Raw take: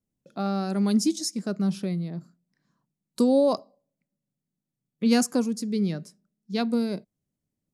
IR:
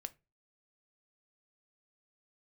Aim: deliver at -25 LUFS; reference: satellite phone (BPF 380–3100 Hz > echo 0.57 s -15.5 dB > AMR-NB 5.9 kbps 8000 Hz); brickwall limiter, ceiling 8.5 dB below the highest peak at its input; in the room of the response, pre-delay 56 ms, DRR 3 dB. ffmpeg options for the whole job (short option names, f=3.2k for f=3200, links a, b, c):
-filter_complex "[0:a]alimiter=limit=-19dB:level=0:latency=1,asplit=2[a][b];[1:a]atrim=start_sample=2205,adelay=56[c];[b][c]afir=irnorm=-1:irlink=0,volume=0.5dB[d];[a][d]amix=inputs=2:normalize=0,highpass=380,lowpass=3.1k,aecho=1:1:570:0.168,volume=9.5dB" -ar 8000 -c:a libopencore_amrnb -b:a 5900